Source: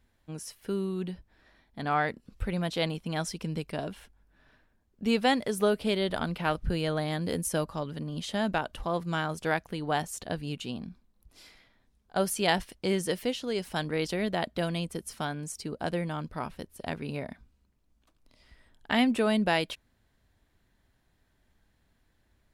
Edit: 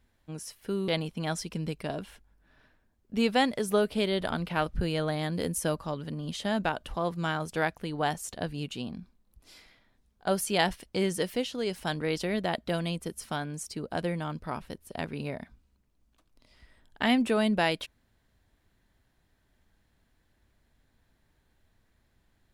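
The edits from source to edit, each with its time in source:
0.88–2.77 s: delete

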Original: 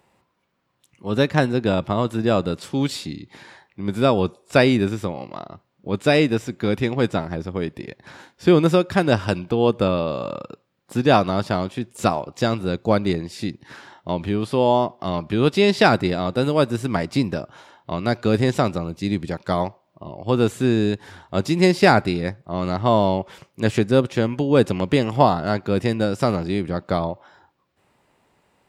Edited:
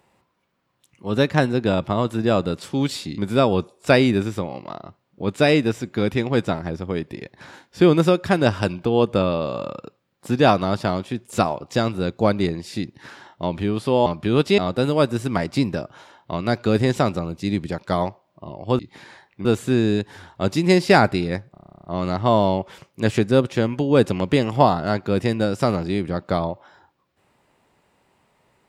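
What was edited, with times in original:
3.18–3.84 s: move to 20.38 s
14.72–15.13 s: delete
15.65–16.17 s: delete
22.45 s: stutter 0.03 s, 12 plays

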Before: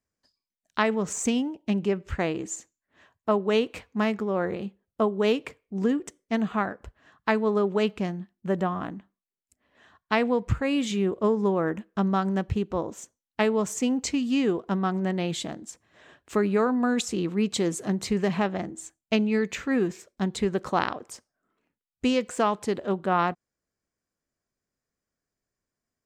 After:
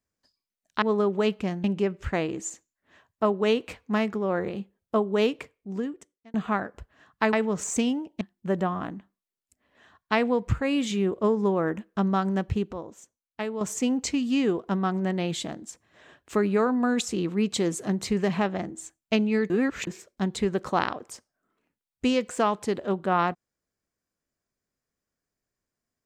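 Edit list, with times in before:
0.82–1.70 s: swap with 7.39–8.21 s
5.33–6.40 s: fade out
12.73–13.61 s: gain -8 dB
19.50–19.87 s: reverse

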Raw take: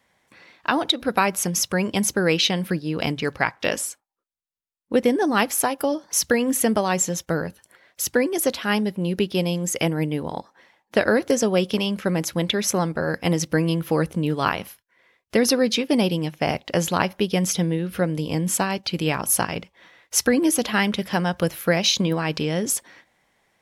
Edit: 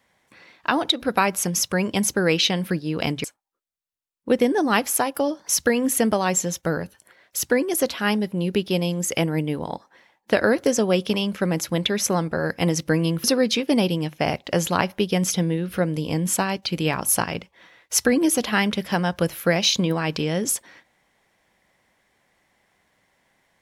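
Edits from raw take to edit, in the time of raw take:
3.24–3.88 s: delete
13.88–15.45 s: delete

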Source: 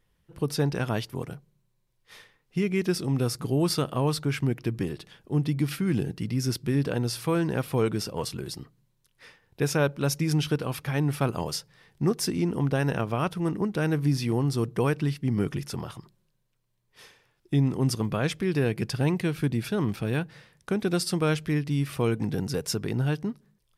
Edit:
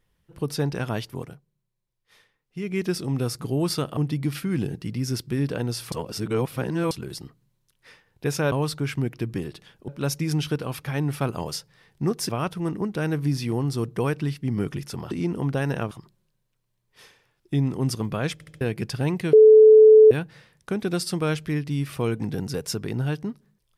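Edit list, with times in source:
1.18–2.78 s: dip -8.5 dB, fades 0.22 s
3.97–5.33 s: move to 9.88 s
7.28–8.27 s: reverse
12.29–13.09 s: move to 15.91 s
18.33 s: stutter in place 0.07 s, 4 plays
19.33–20.11 s: bleep 434 Hz -7.5 dBFS

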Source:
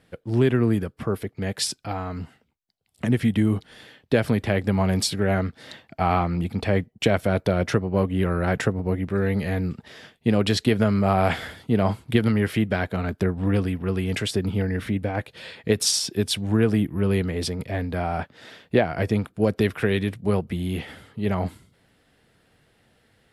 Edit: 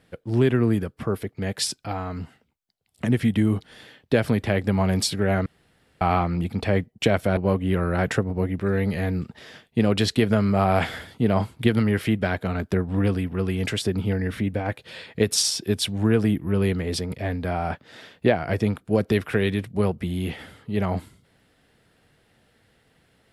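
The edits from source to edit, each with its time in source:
5.46–6.01 s: room tone
7.37–7.86 s: delete

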